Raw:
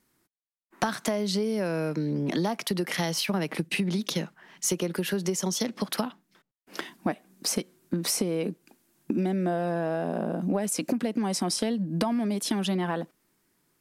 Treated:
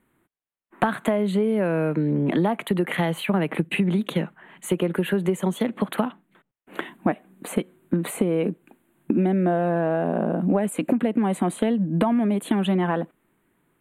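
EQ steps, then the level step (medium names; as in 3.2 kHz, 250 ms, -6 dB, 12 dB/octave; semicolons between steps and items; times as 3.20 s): Butterworth band-stop 5.3 kHz, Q 1.1; treble shelf 4.5 kHz -11.5 dB; +6.0 dB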